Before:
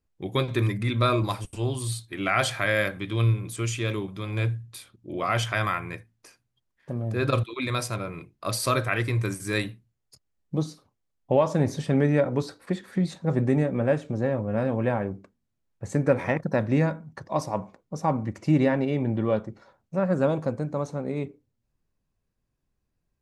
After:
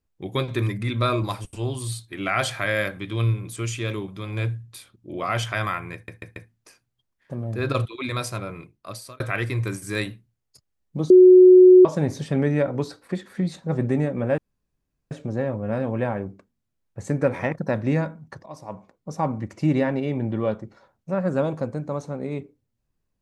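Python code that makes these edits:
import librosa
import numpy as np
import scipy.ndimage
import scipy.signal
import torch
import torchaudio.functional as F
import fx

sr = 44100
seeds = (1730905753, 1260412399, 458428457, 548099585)

y = fx.edit(x, sr, fx.stutter(start_s=5.94, slice_s=0.14, count=4),
    fx.fade_out_span(start_s=8.11, length_s=0.67),
    fx.bleep(start_s=10.68, length_s=0.75, hz=367.0, db=-6.5),
    fx.insert_room_tone(at_s=13.96, length_s=0.73),
    fx.fade_in_from(start_s=17.31, length_s=0.67, floor_db=-17.5), tone=tone)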